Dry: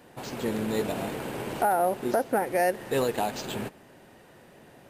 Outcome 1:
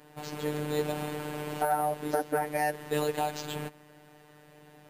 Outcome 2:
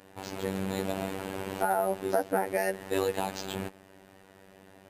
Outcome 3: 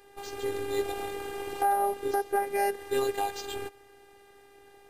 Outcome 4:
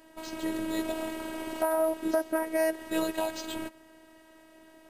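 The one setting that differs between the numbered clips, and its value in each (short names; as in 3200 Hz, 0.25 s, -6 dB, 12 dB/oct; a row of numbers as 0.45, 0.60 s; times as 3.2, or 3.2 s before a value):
robotiser, frequency: 150, 96, 400, 320 Hz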